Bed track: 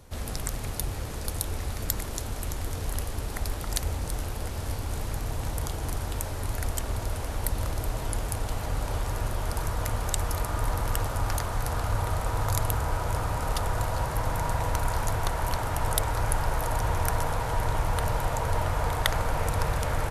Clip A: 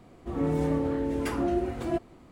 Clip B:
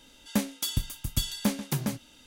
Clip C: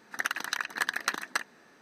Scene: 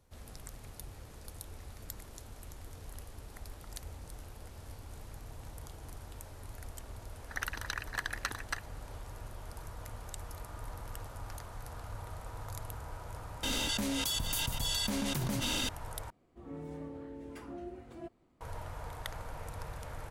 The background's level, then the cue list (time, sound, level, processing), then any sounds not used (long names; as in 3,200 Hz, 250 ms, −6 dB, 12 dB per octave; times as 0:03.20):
bed track −16 dB
0:07.17: mix in C −7 dB
0:13.43: mix in B −12.5 dB + envelope flattener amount 100%
0:16.10: overwrite with A −17 dB